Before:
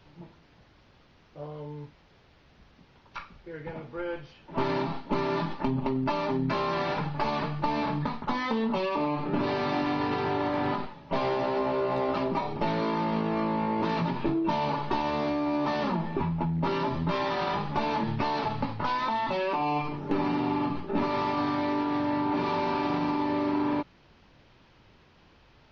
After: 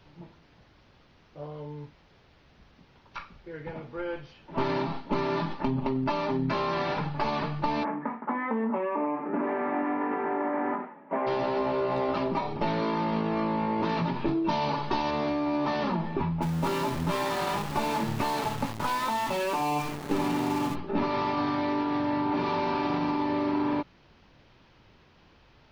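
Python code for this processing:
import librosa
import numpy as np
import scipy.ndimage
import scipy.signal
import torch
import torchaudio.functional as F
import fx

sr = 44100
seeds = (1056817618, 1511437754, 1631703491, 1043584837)

y = fx.ellip_bandpass(x, sr, low_hz=220.0, high_hz=2000.0, order=3, stop_db=40, at=(7.83, 11.26), fade=0.02)
y = fx.peak_eq(y, sr, hz=5100.0, db=5.0, octaves=1.1, at=(14.28, 15.11))
y = fx.sample_gate(y, sr, floor_db=-34.0, at=(16.41, 20.74), fade=0.02)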